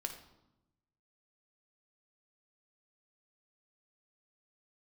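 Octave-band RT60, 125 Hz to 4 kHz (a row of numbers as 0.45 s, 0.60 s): 1.4 s, 1.2 s, 0.95 s, 0.90 s, 0.70 s, 0.65 s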